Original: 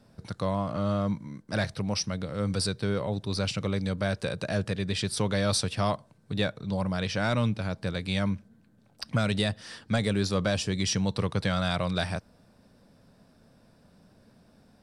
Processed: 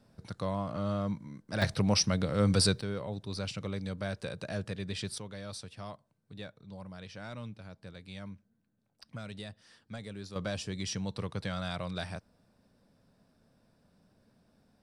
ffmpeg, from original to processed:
ffmpeg -i in.wav -af "asetnsamples=nb_out_samples=441:pad=0,asendcmd='1.62 volume volume 3dB;2.81 volume volume -7.5dB;5.18 volume volume -16.5dB;10.36 volume volume -8.5dB',volume=-5dB" out.wav

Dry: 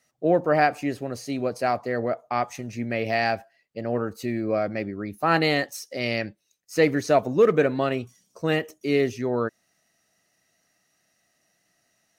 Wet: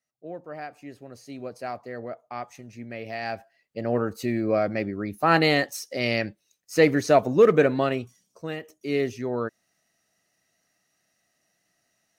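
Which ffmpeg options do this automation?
ffmpeg -i in.wav -af "volume=9.5dB,afade=type=in:start_time=0.64:duration=0.8:silence=0.398107,afade=type=in:start_time=3.2:duration=0.68:silence=0.281838,afade=type=out:start_time=7.72:duration=0.84:silence=0.237137,afade=type=in:start_time=8.56:duration=0.43:silence=0.398107" out.wav

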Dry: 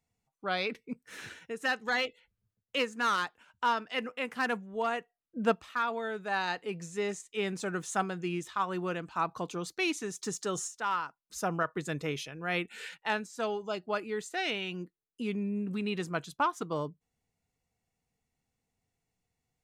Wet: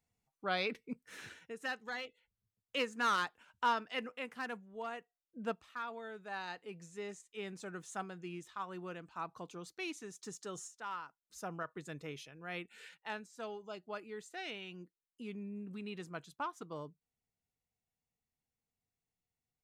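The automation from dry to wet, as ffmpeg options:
ffmpeg -i in.wav -af "volume=7dB,afade=type=out:start_time=0.79:duration=1.24:silence=0.316228,afade=type=in:start_time=2.03:duration=1.08:silence=0.316228,afade=type=out:start_time=3.64:duration=0.83:silence=0.398107" out.wav

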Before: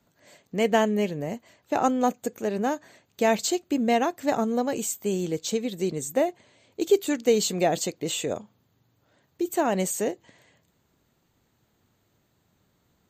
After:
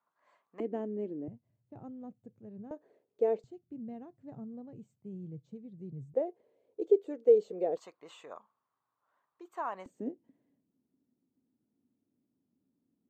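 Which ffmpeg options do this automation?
ffmpeg -i in.wav -af "asetnsamples=nb_out_samples=441:pad=0,asendcmd='0.6 bandpass f 320;1.28 bandpass f 120;2.71 bandpass f 440;3.44 bandpass f 130;6.14 bandpass f 460;7.77 bandpass f 1100;9.86 bandpass f 260',bandpass=frequency=1100:width_type=q:width=5.5:csg=0" out.wav

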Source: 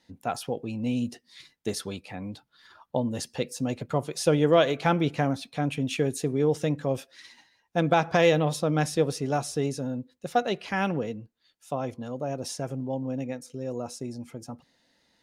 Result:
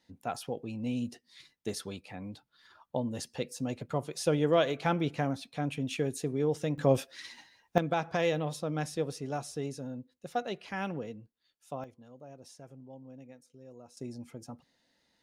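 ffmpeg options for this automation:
ffmpeg -i in.wav -af "asetnsamples=nb_out_samples=441:pad=0,asendcmd='6.78 volume volume 3dB;7.78 volume volume -8.5dB;11.84 volume volume -18dB;13.97 volume volume -5.5dB',volume=-5.5dB" out.wav

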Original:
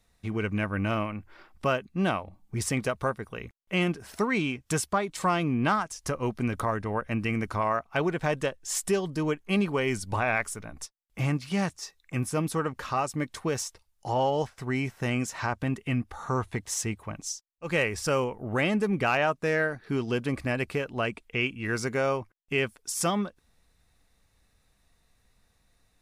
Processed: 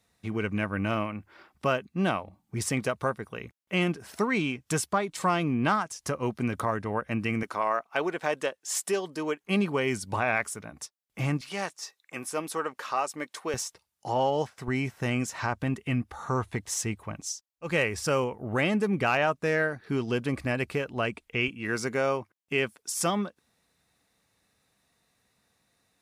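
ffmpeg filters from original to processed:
ffmpeg -i in.wav -af "asetnsamples=nb_out_samples=441:pad=0,asendcmd='7.43 highpass f 330;9.44 highpass f 110;11.41 highpass f 410;13.54 highpass f 130;14.68 highpass f 51;21.48 highpass f 140',highpass=96" out.wav

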